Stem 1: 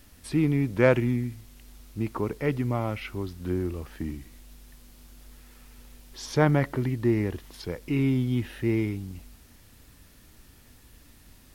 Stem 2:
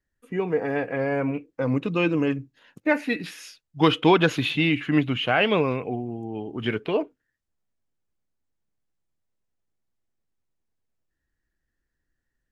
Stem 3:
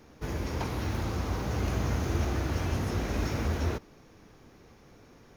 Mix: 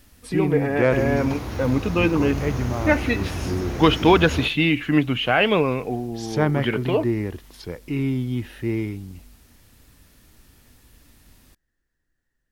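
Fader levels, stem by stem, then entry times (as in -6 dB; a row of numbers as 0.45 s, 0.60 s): +0.5 dB, +2.5 dB, +1.5 dB; 0.00 s, 0.00 s, 0.70 s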